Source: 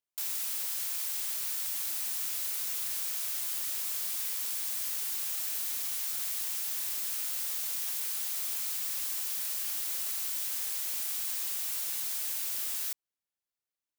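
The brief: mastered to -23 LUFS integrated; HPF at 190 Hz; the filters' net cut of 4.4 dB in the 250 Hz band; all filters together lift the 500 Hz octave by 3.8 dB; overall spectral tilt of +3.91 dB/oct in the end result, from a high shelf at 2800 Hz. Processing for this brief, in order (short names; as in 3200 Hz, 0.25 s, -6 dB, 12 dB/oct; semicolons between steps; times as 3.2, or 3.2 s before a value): HPF 190 Hz; bell 250 Hz -8 dB; bell 500 Hz +6.5 dB; high shelf 2800 Hz +4 dB; gain +4 dB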